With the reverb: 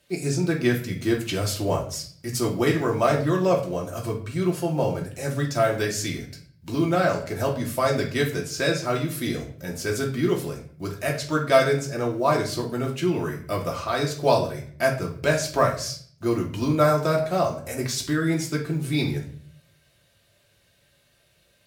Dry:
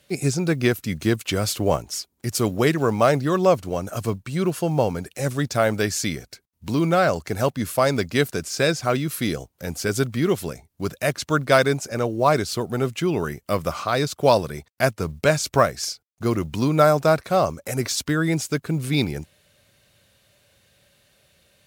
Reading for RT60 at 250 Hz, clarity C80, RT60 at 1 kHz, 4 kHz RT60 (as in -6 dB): 0.75 s, 13.0 dB, 0.45 s, 0.45 s